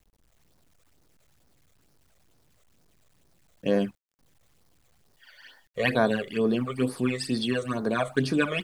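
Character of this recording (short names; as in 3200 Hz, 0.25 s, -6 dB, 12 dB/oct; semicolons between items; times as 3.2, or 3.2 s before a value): phasing stages 12, 2.2 Hz, lowest notch 270–2900 Hz; a quantiser's noise floor 12-bit, dither none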